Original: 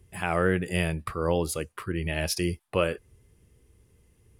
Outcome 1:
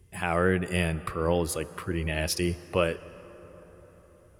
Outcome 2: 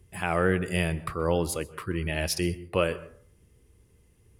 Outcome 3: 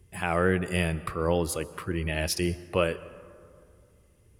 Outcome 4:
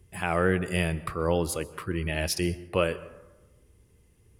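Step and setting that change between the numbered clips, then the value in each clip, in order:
dense smooth reverb, RT60: 5.3, 0.51, 2.3, 1.1 seconds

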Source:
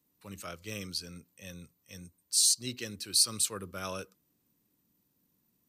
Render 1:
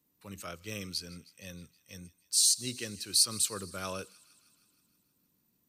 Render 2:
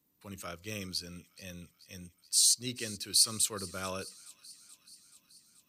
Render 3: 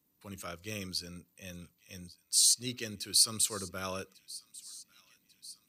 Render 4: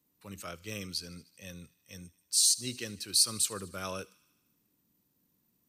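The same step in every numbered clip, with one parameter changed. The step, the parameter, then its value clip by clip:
delay with a high-pass on its return, delay time: 157, 430, 1,144, 76 milliseconds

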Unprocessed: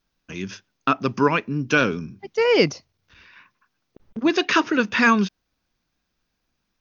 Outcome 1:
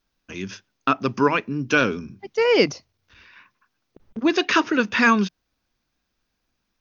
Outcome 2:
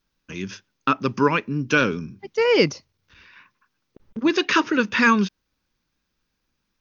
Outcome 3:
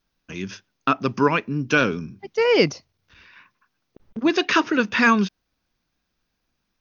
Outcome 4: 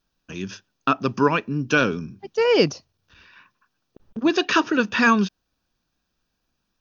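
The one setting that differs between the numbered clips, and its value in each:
notch filter, centre frequency: 160, 700, 7,500, 2,100 Hertz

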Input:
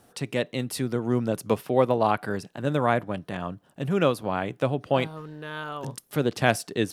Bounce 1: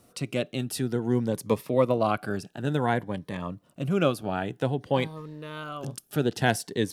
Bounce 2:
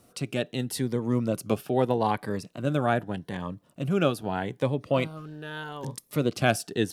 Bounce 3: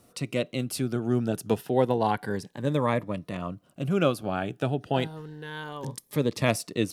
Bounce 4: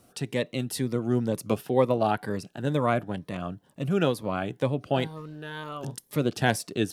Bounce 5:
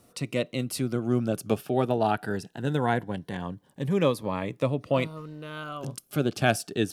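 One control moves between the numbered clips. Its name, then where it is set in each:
phaser whose notches keep moving one way, speed: 0.55, 0.81, 0.3, 2.1, 0.2 Hertz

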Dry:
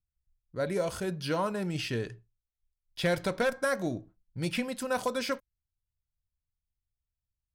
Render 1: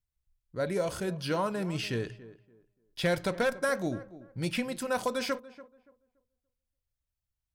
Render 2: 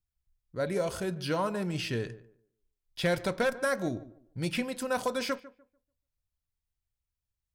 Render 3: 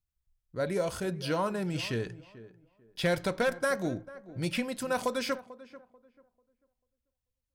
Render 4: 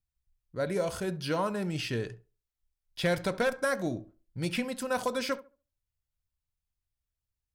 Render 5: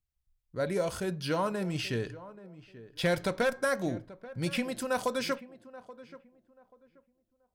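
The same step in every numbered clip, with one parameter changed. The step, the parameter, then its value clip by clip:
tape delay, delay time: 287, 147, 441, 70, 832 milliseconds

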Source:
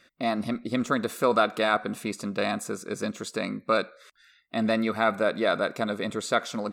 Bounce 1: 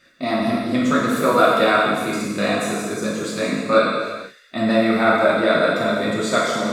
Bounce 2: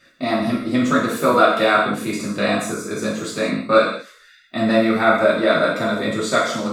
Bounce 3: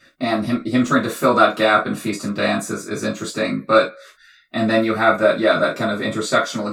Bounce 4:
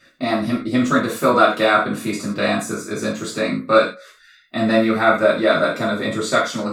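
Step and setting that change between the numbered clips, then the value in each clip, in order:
reverb whose tail is shaped and stops, gate: 520, 240, 90, 140 milliseconds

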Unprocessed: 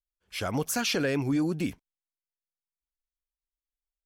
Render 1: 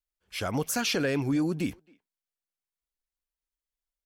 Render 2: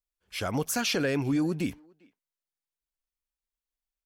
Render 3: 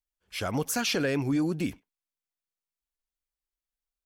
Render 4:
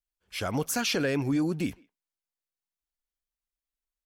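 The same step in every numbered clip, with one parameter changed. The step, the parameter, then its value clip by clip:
far-end echo of a speakerphone, delay time: 270, 400, 100, 160 milliseconds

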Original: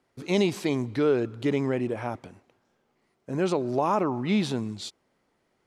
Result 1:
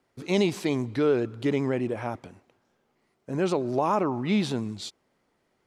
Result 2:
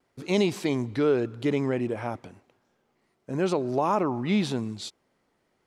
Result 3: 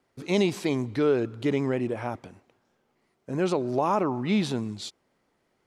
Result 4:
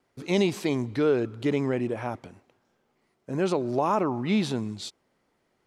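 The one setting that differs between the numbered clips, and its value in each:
pitch vibrato, speed: 10, 0.89, 6.3, 2.1 Hertz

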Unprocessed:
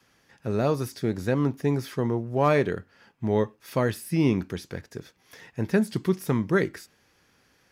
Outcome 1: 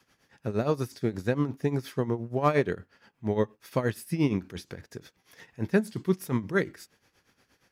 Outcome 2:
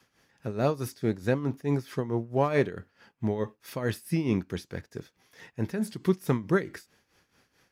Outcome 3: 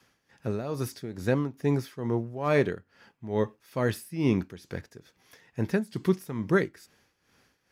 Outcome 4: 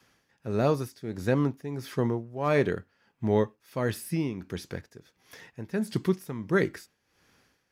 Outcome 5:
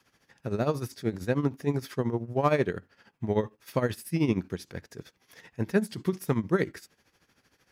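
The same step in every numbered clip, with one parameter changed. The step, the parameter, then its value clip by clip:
amplitude tremolo, speed: 8.5, 4.6, 2.3, 1.5, 13 Hertz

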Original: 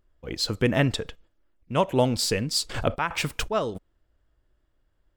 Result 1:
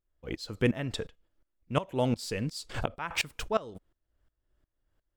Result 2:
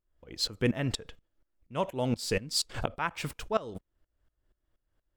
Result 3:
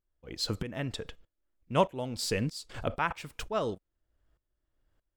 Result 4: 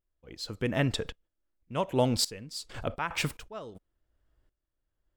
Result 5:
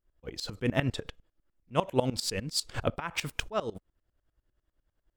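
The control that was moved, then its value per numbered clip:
tremolo with a ramp in dB, speed: 2.8, 4.2, 1.6, 0.89, 10 Hertz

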